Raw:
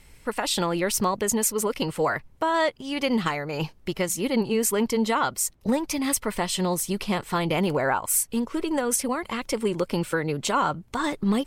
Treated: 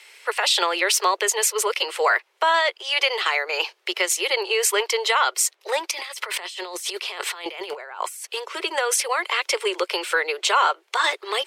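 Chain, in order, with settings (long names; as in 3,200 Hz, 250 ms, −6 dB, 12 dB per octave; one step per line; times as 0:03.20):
Butterworth high-pass 360 Hz 96 dB per octave
parametric band 2,900 Hz +14 dB 3 octaves
brickwall limiter −8 dBFS, peak gain reduction 6.5 dB
0:05.91–0:08.27: compressor whose output falls as the input rises −32 dBFS, ratio −1
level −1 dB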